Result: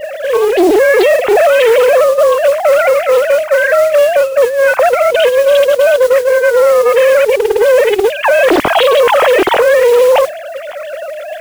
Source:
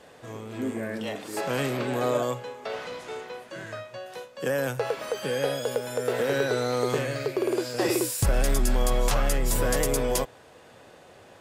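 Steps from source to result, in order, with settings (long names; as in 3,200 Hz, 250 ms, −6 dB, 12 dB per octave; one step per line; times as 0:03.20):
three sine waves on the formant tracks
low-shelf EQ 260 Hz +7 dB
compressor whose output falls as the input rises −26 dBFS, ratio −0.5
noise that follows the level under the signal 21 dB
boost into a limiter +26 dB
highs frequency-modulated by the lows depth 0.54 ms
level −1 dB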